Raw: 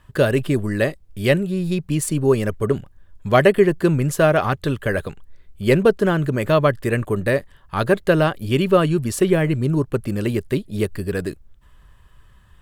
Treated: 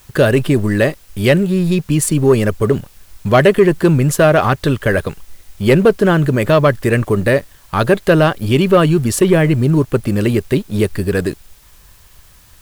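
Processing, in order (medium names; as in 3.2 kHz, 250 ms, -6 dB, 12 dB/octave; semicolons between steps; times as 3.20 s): waveshaping leveller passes 1; in parallel at -2 dB: peak limiter -11.5 dBFS, peak gain reduction 9.5 dB; on the sum: word length cut 8-bit, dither triangular; trim -1 dB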